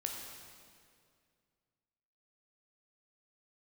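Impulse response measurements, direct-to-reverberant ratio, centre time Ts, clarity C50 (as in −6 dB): 0.5 dB, 77 ms, 2.5 dB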